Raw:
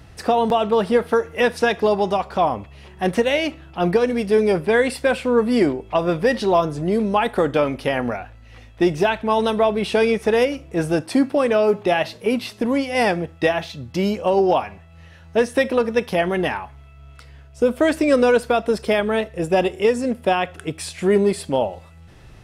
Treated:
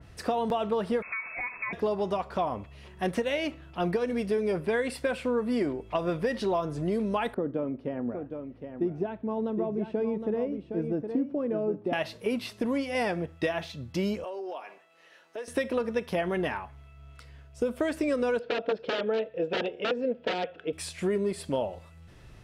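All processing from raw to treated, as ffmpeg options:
-filter_complex "[0:a]asettb=1/sr,asplit=3[a][b][c];[a]atrim=end=1.024[d];[b]atrim=start=1.02:end=1.73,asetpts=PTS-STARTPTS,afade=t=in:d=0.004:c=qsin,afade=t=out:st=0.706:d=0.004:c=qsin,aeval=exprs='val(0)+0.5*0.0237*sgn(val(0))':c=same,acompressor=threshold=-23dB:ratio=6:attack=3.2:release=140:knee=1:detection=peak,lowpass=f=2.3k:t=q:w=0.5098,lowpass=f=2.3k:t=q:w=0.6013,lowpass=f=2.3k:t=q:w=0.9,lowpass=f=2.3k:t=q:w=2.563,afreqshift=-2700[e];[c]atrim=start=1.726[f];[d][e]acrossfade=d=0.004:c1=hsin:c2=qsin[g];[g][f]acrossfade=d=0.004:c1=qsin:c2=hsin,asettb=1/sr,asplit=3[h][i][j];[h]atrim=end=7.344[k];[i]atrim=start=7.34:end=11.93,asetpts=PTS-STARTPTS,afade=t=in:d=0.004:c=qsin,afade=t=out:st=4.586:d=0.004:c=qsin,bandpass=f=250:t=q:w=1.1,aecho=1:1:764:0.398,atrim=end_sample=202419[l];[j]atrim=start=11.926[m];[k][l]acrossfade=d=0.004:c1=hsin:c2=qsin[n];[n][m]acrossfade=d=0.004:c1=qsin:c2=hsin,asettb=1/sr,asplit=3[o][p][q];[o]atrim=end=14.244[r];[p]atrim=start=14.24:end=15.48,asetpts=PTS-STARTPTS,afade=t=in:d=0.004:c=qsin,afade=t=out:st=1.236:d=0.004:c=qsin,highpass=f=330:w=0.5412,highpass=f=330:w=1.3066,acompressor=threshold=-32dB:ratio=3:attack=3.2:release=140:knee=1:detection=peak[s];[q]atrim=start=15.476[t];[r][s]acrossfade=d=0.004:c1=hsin:c2=qsin[u];[u][t]acrossfade=d=0.004:c1=qsin:c2=hsin,asettb=1/sr,asplit=3[v][w][x];[v]atrim=end=18.394[y];[w]atrim=start=18.39:end=20.73,asetpts=PTS-STARTPTS,afade=t=in:d=0.004:c=qsin,afade=t=out:st=2.336:d=0.004:c=qsin,bandreject=f=390:w=5.2,aeval=exprs='(mod(4.73*val(0)+1,2)-1)/4.73':c=same,highpass=250,equalizer=f=470:t=q:w=4:g=10,equalizer=f=1.1k:t=q:w=4:g=-10,equalizer=f=2k:t=q:w=4:g=-7,lowpass=f=3.5k:w=0.5412,lowpass=f=3.5k:w=1.3066[z];[x]atrim=start=20.726[aa];[y][z]acrossfade=d=0.004:c1=hsin:c2=qsin[ab];[ab][aa]acrossfade=d=0.004:c1=qsin:c2=hsin,bandreject=f=800:w=12,acompressor=threshold=-18dB:ratio=6,adynamicequalizer=threshold=0.0141:dfrequency=2500:dqfactor=0.7:tfrequency=2500:tqfactor=0.7:attack=5:release=100:ratio=0.375:range=2:mode=cutabove:tftype=highshelf,volume=-6dB"

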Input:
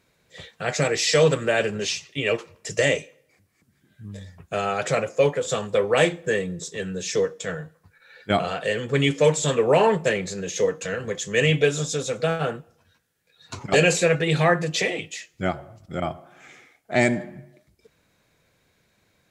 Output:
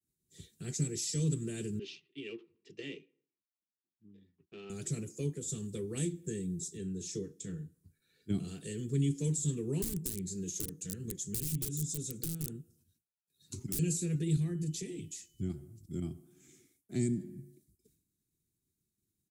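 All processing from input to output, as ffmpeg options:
-filter_complex "[0:a]asettb=1/sr,asplit=3[a][b][c];[a]atrim=end=1.794[d];[b]atrim=start=1.79:end=4.7,asetpts=PTS-STARTPTS,afade=t=in:d=0.004:c=qsin,afade=t=out:st=2.906:d=0.004:c=qsin,adynamicsmooth=sensitivity=6:basefreq=2.1k,highpass=400,equalizer=f=620:t=q:w=4:g=-7,equalizer=f=1.6k:t=q:w=4:g=-4,equalizer=f=2.8k:t=q:w=4:g=4,lowpass=f=3.5k:w=0.5412,lowpass=f=3.5k:w=1.3066[e];[c]atrim=start=4.696[f];[d][e]acrossfade=d=0.004:c1=hsin:c2=qsin[g];[g][f]acrossfade=d=0.004:c1=qsin:c2=hsin,asettb=1/sr,asplit=3[h][i][j];[h]atrim=end=6.774[k];[i]atrim=start=6.77:end=8.37,asetpts=PTS-STARTPTS,afade=t=in:d=0.004:c=qsin,afade=t=out:st=1.596:d=0.004:c=qsin,highshelf=f=5.6k:g=-9,asplit=2[l][m];[m]adelay=35,volume=-13dB[n];[l][n]amix=inputs=2:normalize=0,atrim=end_sample=70560[o];[j]atrim=start=8.366[p];[k][o]acrossfade=d=0.004:c1=hsin:c2=qsin[q];[q][p]acrossfade=d=0.004:c1=qsin:c2=hsin,asettb=1/sr,asplit=3[r][s][t];[r]atrim=end=9.824[u];[s]atrim=start=9.82:end=13.79,asetpts=PTS-STARTPTS,afade=t=in:d=0.004:c=qsin,afade=t=out:st=3.966:d=0.004:c=qsin,highpass=50,acompressor=threshold=-21dB:ratio=2.5:attack=3.2:release=140:knee=1:detection=peak,aeval=exprs='(mod(7.94*val(0)+1,2)-1)/7.94':c=same[v];[t]atrim=start=13.786[w];[u][v]acrossfade=d=0.004:c1=hsin:c2=qsin[x];[x][w]acrossfade=d=0.004:c1=qsin:c2=hsin,asettb=1/sr,asplit=3[y][z][aa];[y]atrim=end=14.364[ab];[z]atrim=start=14.36:end=15.5,asetpts=PTS-STARTPTS,afade=t=in:d=0.004:c=qsin,afade=t=out:st=1.136:d=0.004:c=qsin,lowshelf=f=140:g=9.5,acompressor=threshold=-34dB:ratio=1.5:attack=3.2:release=140:knee=1:detection=peak,aeval=exprs='val(0)+0.002*sin(2*PI*3000*n/s)':c=same[ac];[aa]atrim=start=15.496[ad];[ab][ac]acrossfade=d=0.004:c1=hsin:c2=qsin[ae];[ae][ad]acrossfade=d=0.004:c1=qsin:c2=hsin,agate=range=-33dB:threshold=-56dB:ratio=3:detection=peak,firequalizer=gain_entry='entry(370,0);entry(550,-30);entry(3900,-9);entry(8700,8)':delay=0.05:min_phase=1,acrossover=split=210[af][ag];[ag]acompressor=threshold=-34dB:ratio=2[ah];[af][ah]amix=inputs=2:normalize=0,volume=-5dB"

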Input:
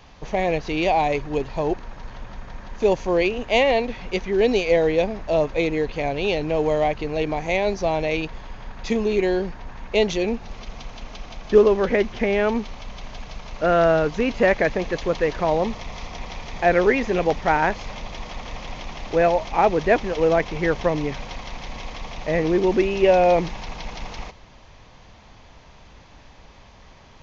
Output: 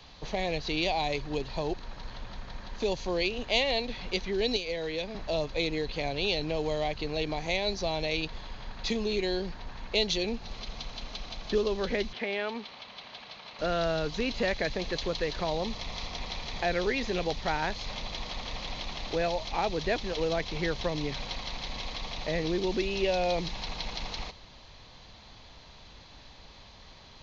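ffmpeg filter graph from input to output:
-filter_complex "[0:a]asettb=1/sr,asplit=3[a][b][c];[a]atrim=end=4.564[d];[b]atrim=start=4.56:end=5.15,asetpts=PTS-STARTPTS,afade=t=in:d=0.004:c=qsin,afade=t=out:st=0.586:d=0.004:c=qsin,equalizer=f=740:w=7.5:g=-7,acrossover=split=250|1000[e][f][g];[e]acompressor=threshold=-37dB:ratio=4[h];[f]acompressor=threshold=-28dB:ratio=4[i];[g]acompressor=threshold=-33dB:ratio=4[j];[h][i][j]amix=inputs=3:normalize=0[k];[c]atrim=start=5.146[l];[d][k]acrossfade=d=0.004:c1=hsin:c2=qsin[m];[m][l]acrossfade=d=0.004:c1=qsin:c2=hsin,asettb=1/sr,asplit=3[n][o][p];[n]atrim=end=12.134[q];[o]atrim=start=12.13:end=13.59,asetpts=PTS-STARTPTS,afade=t=in:d=0.004:c=qsin,afade=t=out:st=1.456:d=0.004:c=qsin,highpass=140,lowpass=3.6k,lowshelf=f=450:g=-9.5[r];[p]atrim=start=13.586[s];[q][r]acrossfade=d=0.004:c1=hsin:c2=qsin[t];[t][s]acrossfade=d=0.004:c1=qsin:c2=hsin,equalizer=f=4k:w=2.3:g=13.5,bandreject=f=3.7k:w=29,acrossover=split=140|3000[u][v][w];[v]acompressor=threshold=-27dB:ratio=2[x];[u][x][w]amix=inputs=3:normalize=0,volume=-5dB"

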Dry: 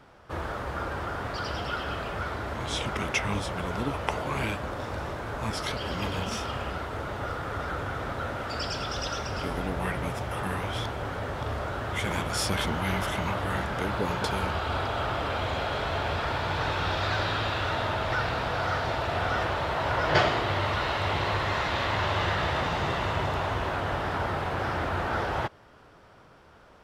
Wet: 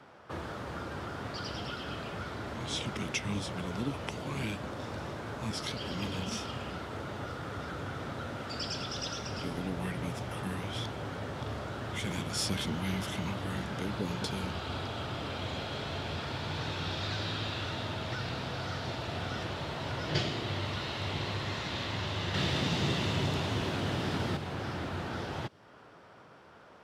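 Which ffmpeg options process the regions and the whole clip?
-filter_complex "[0:a]asettb=1/sr,asplit=3[a][b][c];[a]atrim=end=22.344[d];[b]atrim=start=22.34:end=24.37,asetpts=PTS-STARTPTS,afade=t=in:d=0.004:c=qsin,afade=t=out:st=2.026:d=0.004:c=qsin,acontrast=79,lowshelf=f=61:g=-11[e];[c]atrim=start=24.366[f];[d][e]acrossfade=d=0.004:c1=hsin:c2=qsin[g];[g][f]acrossfade=d=0.004:c1=qsin:c2=hsin,acrossover=split=330|3000[h][i][j];[i]acompressor=threshold=-41dB:ratio=6[k];[h][k][j]amix=inputs=3:normalize=0,highpass=120,highshelf=f=11k:g=-10.5"

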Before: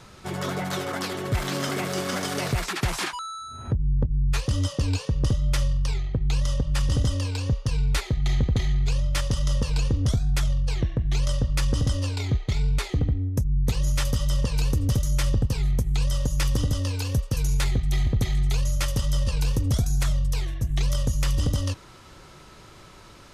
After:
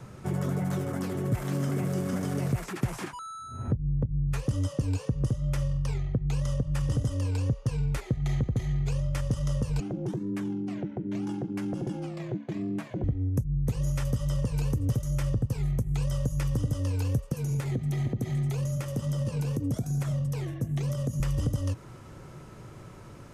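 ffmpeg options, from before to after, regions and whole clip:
-filter_complex "[0:a]asettb=1/sr,asplit=3[a][b][c];[a]atrim=end=9.804[d];[b]atrim=start=9.8:end=13.04,asetpts=PTS-STARTPTS,afade=t=in:d=0.004:c=qsin,afade=t=out:st=3.236:d=0.004:c=qsin,bass=f=250:g=-8,treble=f=4k:g=-10,aeval=exprs='val(0)*sin(2*PI*250*n/s)':c=same,highpass=f=190:p=1[e];[c]atrim=start=13.036[f];[d][e]acrossfade=d=0.004:c1=hsin:c2=qsin[g];[g][f]acrossfade=d=0.004:c1=qsin:c2=hsin,asettb=1/sr,asplit=3[h][i][j];[h]atrim=end=17.324[k];[i]atrim=start=17.32:end=21.2,asetpts=PTS-STARTPTS,afade=t=in:d=0.004:c=qsin,afade=t=out:st=3.876:d=0.004:c=qsin,highpass=230,acompressor=threshold=-33dB:ratio=2.5:attack=3.2:release=140:knee=1:detection=peak,lowshelf=f=460:g=7[l];[j]atrim=start=21.196[m];[k][l]acrossfade=d=0.004:c1=hsin:c2=qsin[n];[n][m]acrossfade=d=0.004:c1=qsin:c2=hsin,equalizer=f=125:t=o:w=1:g=11,equalizer=f=250:t=o:w=1:g=4,equalizer=f=500:t=o:w=1:g=4,equalizer=f=4k:t=o:w=1:g=-9,acrossover=split=320|6200[o][p][q];[o]acompressor=threshold=-23dB:ratio=4[r];[p]acompressor=threshold=-35dB:ratio=4[s];[q]acompressor=threshold=-46dB:ratio=4[t];[r][s][t]amix=inputs=3:normalize=0,volume=-3dB"

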